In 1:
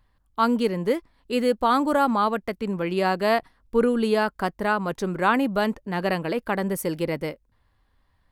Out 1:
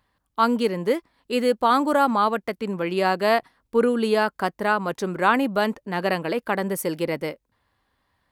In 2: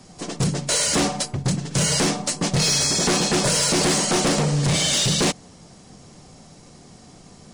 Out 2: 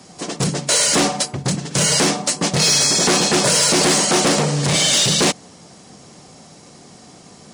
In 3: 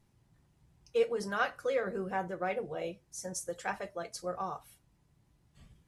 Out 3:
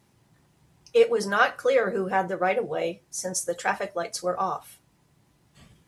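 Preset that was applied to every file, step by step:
high-pass 210 Hz 6 dB/octave; peak normalisation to -6 dBFS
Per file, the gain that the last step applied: +2.0 dB, +5.0 dB, +10.5 dB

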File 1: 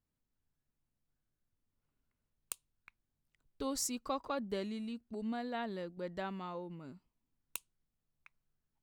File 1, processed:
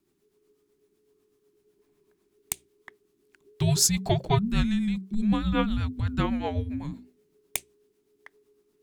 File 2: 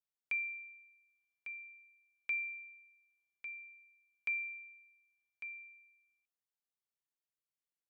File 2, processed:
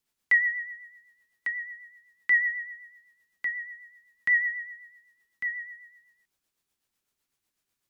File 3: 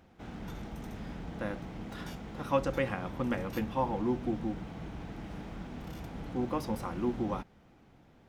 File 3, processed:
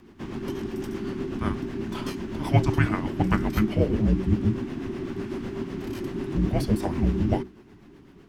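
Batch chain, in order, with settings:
hum notches 60/120/180/240/300/360 Hz; rotary cabinet horn 8 Hz; frequency shift -430 Hz; normalise loudness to -27 LUFS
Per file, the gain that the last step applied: +17.0 dB, +16.5 dB, +12.0 dB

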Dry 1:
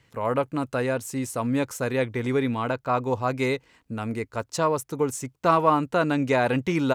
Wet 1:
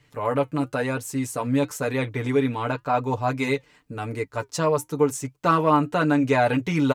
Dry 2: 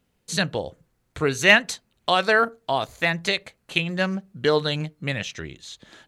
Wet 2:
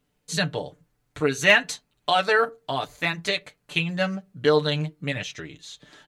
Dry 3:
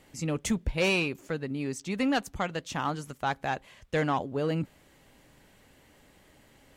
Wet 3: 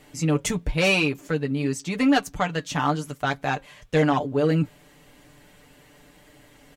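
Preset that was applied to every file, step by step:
comb 6.8 ms, depth 69%; flange 0.94 Hz, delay 2.7 ms, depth 2.5 ms, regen -79%; normalise loudness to -24 LUFS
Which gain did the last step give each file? +4.0 dB, +1.0 dB, +9.0 dB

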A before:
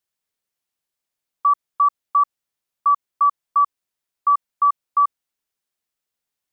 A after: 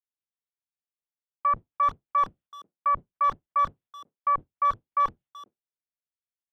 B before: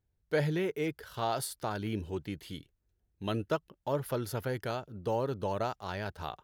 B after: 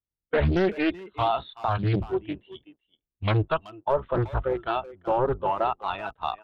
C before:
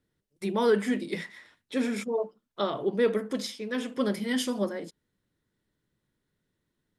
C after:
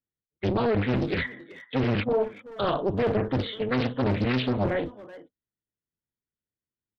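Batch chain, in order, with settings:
octave divider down 1 oct, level +2 dB; spectral noise reduction 16 dB; gate -46 dBFS, range -13 dB; bass shelf 140 Hz -5 dB; reverse; compression 6:1, threshold -28 dBFS; reverse; peak limiter -26 dBFS; resampled via 8 kHz; speakerphone echo 380 ms, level -15 dB; loudspeaker Doppler distortion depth 0.75 ms; normalise loudness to -27 LUFS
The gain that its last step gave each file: +8.5 dB, +12.0 dB, +10.0 dB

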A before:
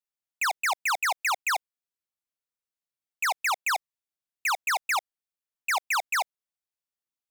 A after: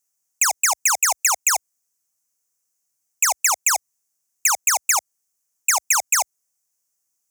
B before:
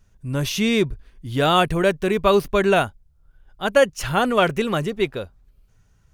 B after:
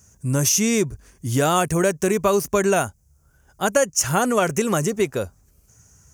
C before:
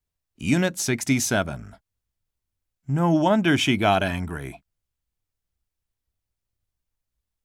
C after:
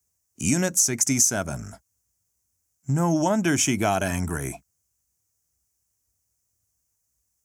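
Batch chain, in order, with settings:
high-pass 57 Hz 24 dB/octave; resonant high shelf 4.9 kHz +9.5 dB, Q 3; compression 3:1, threshold -24 dBFS; peak normalisation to -6 dBFS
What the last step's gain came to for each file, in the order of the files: +8.0 dB, +6.0 dB, +3.5 dB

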